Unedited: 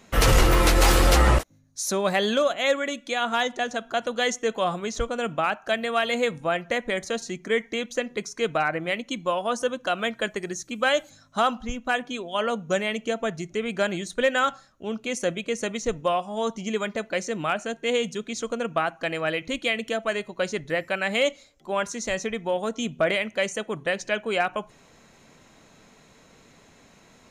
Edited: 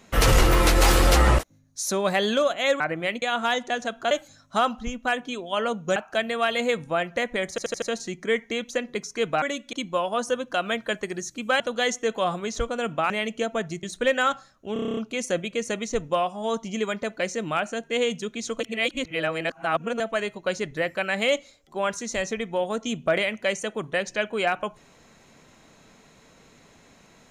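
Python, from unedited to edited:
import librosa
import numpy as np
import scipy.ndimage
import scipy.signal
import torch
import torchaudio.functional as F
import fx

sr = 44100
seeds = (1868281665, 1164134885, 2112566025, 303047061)

y = fx.edit(x, sr, fx.swap(start_s=2.8, length_s=0.31, other_s=8.64, other_length_s=0.42),
    fx.swap(start_s=4.0, length_s=1.5, other_s=10.93, other_length_s=1.85),
    fx.stutter(start_s=7.04, slice_s=0.08, count=5),
    fx.cut(start_s=13.51, length_s=0.49),
    fx.stutter(start_s=14.9, slice_s=0.03, count=9),
    fx.reverse_span(start_s=18.53, length_s=1.4), tone=tone)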